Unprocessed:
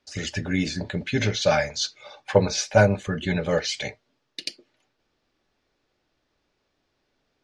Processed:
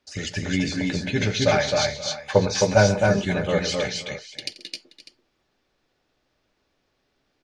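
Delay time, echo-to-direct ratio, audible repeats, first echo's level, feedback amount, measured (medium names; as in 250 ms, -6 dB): 87 ms, -2.0 dB, 5, -17.0 dB, no regular repeats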